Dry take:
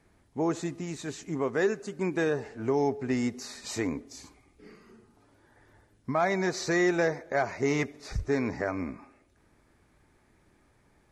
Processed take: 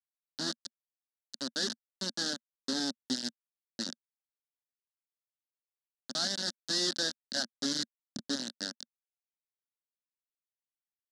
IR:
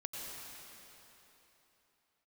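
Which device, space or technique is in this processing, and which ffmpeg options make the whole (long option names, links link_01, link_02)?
hand-held game console: -af "acrusher=bits=3:mix=0:aa=0.000001,highpass=430,equalizer=frequency=560:width_type=q:width=4:gain=9,equalizer=frequency=1100:width_type=q:width=4:gain=-5,equalizer=frequency=2200:width_type=q:width=4:gain=-8,equalizer=frequency=3500:width_type=q:width=4:gain=-10,lowpass=frequency=5300:width=0.5412,lowpass=frequency=5300:width=1.3066,firequalizer=gain_entry='entry(110,0);entry(230,13);entry(420,-16);entry(720,-16);entry(1100,-15);entry(1600,-4);entry(2400,-21);entry(3600,11);entry(6100,8);entry(10000,14)':delay=0.05:min_phase=1,volume=-2.5dB"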